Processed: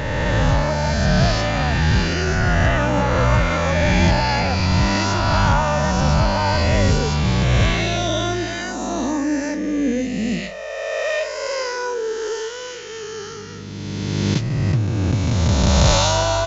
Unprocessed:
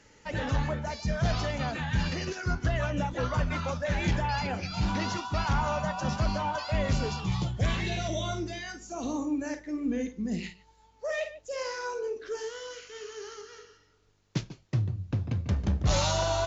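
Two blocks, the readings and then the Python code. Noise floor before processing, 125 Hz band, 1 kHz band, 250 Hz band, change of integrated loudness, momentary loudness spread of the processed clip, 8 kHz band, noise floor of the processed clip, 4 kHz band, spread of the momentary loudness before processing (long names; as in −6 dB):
−62 dBFS, +12.0 dB, +11.5 dB, +11.5 dB, +12.0 dB, 11 LU, can't be measured, −32 dBFS, +12.5 dB, 9 LU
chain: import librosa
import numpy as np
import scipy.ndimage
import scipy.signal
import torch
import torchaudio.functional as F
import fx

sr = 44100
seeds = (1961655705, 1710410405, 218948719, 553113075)

y = fx.spec_swells(x, sr, rise_s=2.56)
y = y * librosa.db_to_amplitude(7.0)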